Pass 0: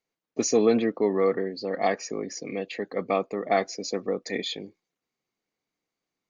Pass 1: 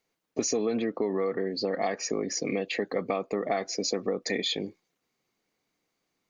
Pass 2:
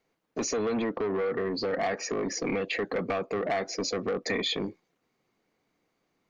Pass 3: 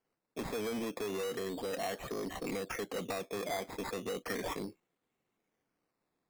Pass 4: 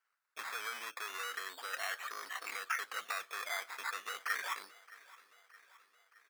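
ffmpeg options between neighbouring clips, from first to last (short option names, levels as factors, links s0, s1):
-filter_complex "[0:a]asplit=2[s0][s1];[s1]alimiter=limit=0.0841:level=0:latency=1,volume=1.19[s2];[s0][s2]amix=inputs=2:normalize=0,acompressor=threshold=0.0562:ratio=6"
-filter_complex "[0:a]highshelf=f=3200:g=-11.5,acrossover=split=1500[s0][s1];[s0]asoftclip=type=tanh:threshold=0.0266[s2];[s2][s1]amix=inputs=2:normalize=0,volume=2"
-af "acrusher=samples=12:mix=1:aa=0.000001:lfo=1:lforange=7.2:lforate=0.35,volume=0.398"
-af "highpass=f=1400:t=q:w=3.1,aecho=1:1:619|1238|1857|2476|3095:0.1|0.058|0.0336|0.0195|0.0113"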